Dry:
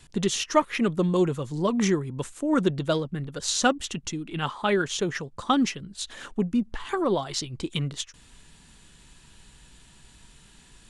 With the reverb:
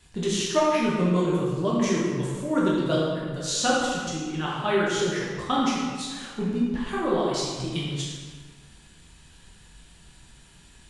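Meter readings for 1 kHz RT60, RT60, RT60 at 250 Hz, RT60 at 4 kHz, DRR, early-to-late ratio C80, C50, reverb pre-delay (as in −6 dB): 1.6 s, 1.6 s, 1.6 s, 1.2 s, −6.0 dB, 1.5 dB, −0.5 dB, 6 ms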